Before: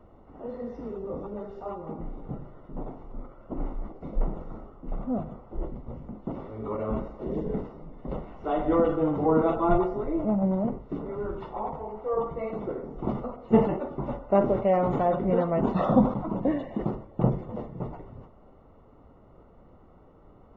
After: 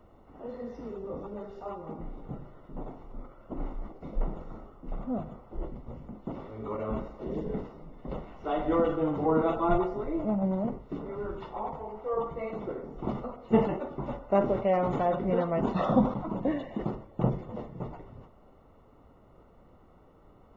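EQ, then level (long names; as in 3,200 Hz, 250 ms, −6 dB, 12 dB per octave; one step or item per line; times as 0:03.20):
high-shelf EQ 2,100 Hz +8.5 dB
−3.5 dB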